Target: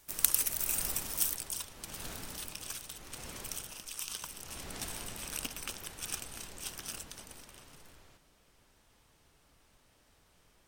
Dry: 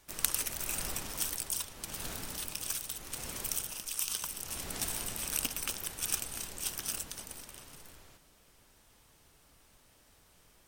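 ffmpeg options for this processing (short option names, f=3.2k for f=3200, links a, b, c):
-af "asetnsamples=n=441:p=0,asendcmd='1.33 highshelf g -2.5;2.52 highshelf g -7.5',highshelf=f=8k:g=9,volume=-2dB"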